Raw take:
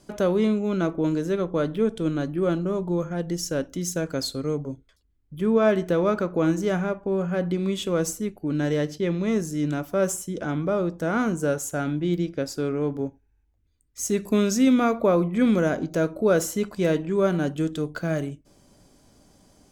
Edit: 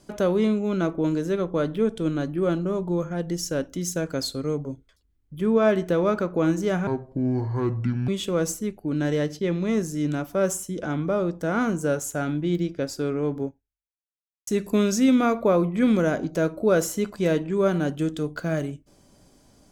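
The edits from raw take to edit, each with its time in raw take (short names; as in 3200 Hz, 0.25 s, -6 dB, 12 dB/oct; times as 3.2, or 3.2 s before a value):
6.87–7.67 speed 66%
13.03–14.06 fade out exponential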